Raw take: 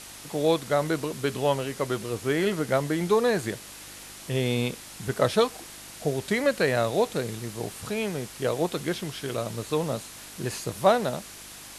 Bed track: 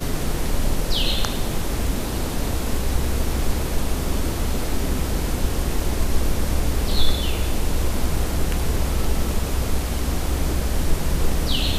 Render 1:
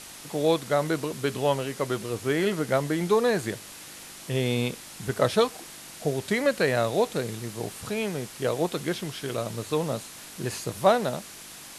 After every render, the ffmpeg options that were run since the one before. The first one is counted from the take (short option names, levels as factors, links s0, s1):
-af "bandreject=f=50:t=h:w=4,bandreject=f=100:t=h:w=4"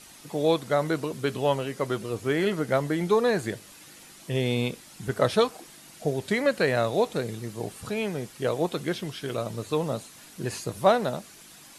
-af "afftdn=nr=8:nf=-44"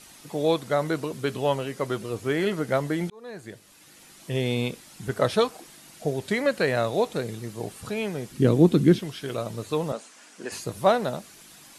-filter_complex "[0:a]asettb=1/sr,asplit=3[s0][s1][s2];[s0]atrim=end=8.314[s3];[s1]atrim=start=8.31:end=8.99,asetpts=PTS-STARTPTS,afade=t=in:d=0.004:c=qsin,afade=t=out:st=0.676:d=0.004:c=qsin,lowshelf=f=420:t=q:w=1.5:g=13[s4];[s2]atrim=start=8.986[s5];[s3][s4]acrossfade=d=0.004:c1=hsin:c2=qsin[s6];[s6][s5]acrossfade=d=0.004:c1=qsin:c2=hsin,asettb=1/sr,asplit=3[s7][s8][s9];[s7]atrim=end=9.924[s10];[s8]atrim=start=9.92:end=10.52,asetpts=PTS-STARTPTS,afade=t=in:d=0.004:c=qsin,afade=t=out:st=0.596:d=0.004:c=qsin,highpass=f=250:w=0.5412,highpass=f=250:w=1.3066,equalizer=f=340:t=q:w=4:g=-5,equalizer=f=1500:t=q:w=4:g=3,equalizer=f=3900:t=q:w=4:g=-6,lowpass=f=8800:w=0.5412,lowpass=f=8800:w=1.3066[s11];[s9]atrim=start=10.516[s12];[s10][s11]acrossfade=d=0.004:c1=hsin:c2=qsin[s13];[s13][s12]acrossfade=d=0.004:c1=qsin:c2=hsin,asplit=2[s14][s15];[s14]atrim=end=3.1,asetpts=PTS-STARTPTS,afade=t=out:st=3.096:d=0.004:c=hsin[s16];[s15]atrim=start=3.1,asetpts=PTS-STARTPTS,afade=t=in:d=1.2[s17];[s16][s17]concat=n=2:v=0:a=1"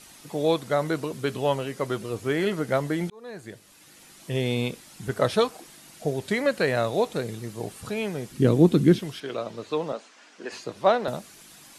-filter_complex "[0:a]asettb=1/sr,asplit=3[s0][s1][s2];[s0]atrim=end=9.204[s3];[s1]atrim=start=9.2:end=11.08,asetpts=PTS-STARTPTS,afade=t=in:d=0.004:c=qsin,afade=t=out:st=1.876:d=0.004:c=qsin,acrossover=split=210 6000:gain=0.224 1 0.112[s4][s5][s6];[s4][s5][s6]amix=inputs=3:normalize=0[s7];[s2]atrim=start=11.076[s8];[s3][s7]acrossfade=d=0.004:c1=hsin:c2=qsin[s9];[s9][s8]acrossfade=d=0.004:c1=qsin:c2=hsin"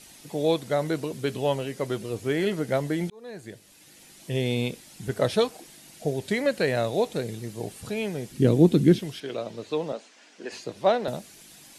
-af "equalizer=f=1200:t=o:w=0.75:g=-7"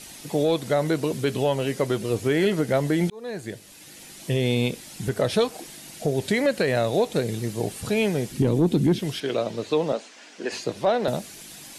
-af "acontrast=84,alimiter=limit=0.237:level=0:latency=1:release=174"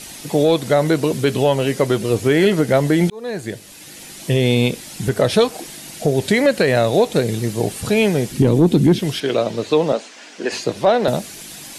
-af "volume=2.24"